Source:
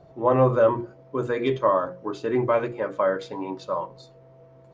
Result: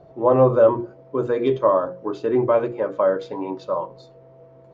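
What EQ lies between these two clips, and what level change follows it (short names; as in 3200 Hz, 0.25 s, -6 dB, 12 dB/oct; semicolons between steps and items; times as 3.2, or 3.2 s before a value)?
bell 470 Hz +5 dB 1.9 oct; dynamic EQ 2000 Hz, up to -6 dB, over -40 dBFS, Q 2; air absorption 61 m; 0.0 dB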